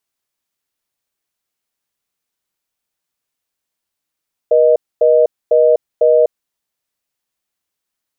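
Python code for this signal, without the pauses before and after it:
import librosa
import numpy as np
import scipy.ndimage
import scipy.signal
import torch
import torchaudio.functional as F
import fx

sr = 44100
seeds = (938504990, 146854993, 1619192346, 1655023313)

y = fx.call_progress(sr, length_s=1.92, kind='reorder tone', level_db=-10.0)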